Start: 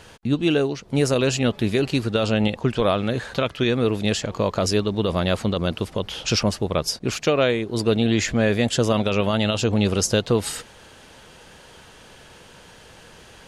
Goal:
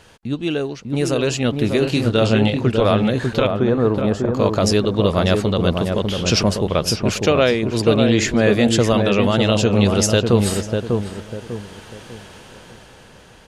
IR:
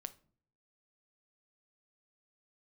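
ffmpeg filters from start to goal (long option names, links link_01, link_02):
-filter_complex "[0:a]asettb=1/sr,asplit=3[link_01][link_02][link_03];[link_01]atrim=end=1.794[link_04];[link_02]atrim=start=1.79:end=2.57,asetpts=PTS-STARTPTS,afade=type=in:duration=0.004:curve=qsin,afade=type=out:start_time=0.776:duration=0.004:curve=qsin,asplit=2[link_05][link_06];[link_06]adelay=27,volume=-5dB[link_07];[link_05][link_07]amix=inputs=2:normalize=0,atrim=end_sample=34398[link_08];[link_03]atrim=start=2.566[link_09];[link_04][link_08]acrossfade=duration=0.004:curve1=hsin:curve2=qsin[link_10];[link_10][link_09]acrossfade=duration=0.004:curve1=qsin:curve2=hsin,asettb=1/sr,asplit=3[link_11][link_12][link_13];[link_11]atrim=end=3.474[link_14];[link_12]atrim=start=3.47:end=4.34,asetpts=PTS-STARTPTS,afade=type=in:duration=0.004:curve=qsin,afade=type=out:start_time=0.866:duration=0.004:curve=qsin,highshelf=frequency=1700:width_type=q:width=1.5:gain=-13.5[link_15];[link_13]atrim=start=4.336[link_16];[link_14][link_15]acrossfade=duration=0.004:curve1=hsin:curve2=qsin[link_17];[link_17][link_16]acrossfade=duration=0.004:curve1=qsin:curve2=hsin,dynaudnorm=framelen=230:gausssize=11:maxgain=9.5dB,asplit=2[link_18][link_19];[link_19]adelay=597,lowpass=frequency=1100:poles=1,volume=-3.5dB,asplit=2[link_20][link_21];[link_21]adelay=597,lowpass=frequency=1100:poles=1,volume=0.37,asplit=2[link_22][link_23];[link_23]adelay=597,lowpass=frequency=1100:poles=1,volume=0.37,asplit=2[link_24][link_25];[link_25]adelay=597,lowpass=frequency=1100:poles=1,volume=0.37,asplit=2[link_26][link_27];[link_27]adelay=597,lowpass=frequency=1100:poles=1,volume=0.37[link_28];[link_20][link_22][link_24][link_26][link_28]amix=inputs=5:normalize=0[link_29];[link_18][link_29]amix=inputs=2:normalize=0,volume=-2.5dB"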